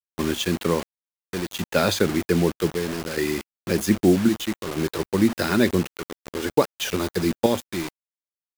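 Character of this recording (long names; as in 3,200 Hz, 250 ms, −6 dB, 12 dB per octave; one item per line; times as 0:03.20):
chopped level 0.63 Hz, depth 60%, duty 70%
a quantiser's noise floor 6 bits, dither none
Ogg Vorbis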